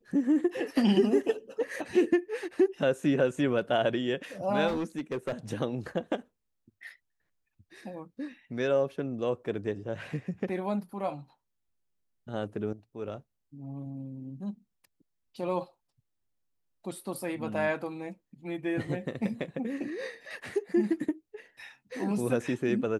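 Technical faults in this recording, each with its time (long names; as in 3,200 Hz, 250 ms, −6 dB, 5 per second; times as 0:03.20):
0:04.67–0:05.33: clipping −27.5 dBFS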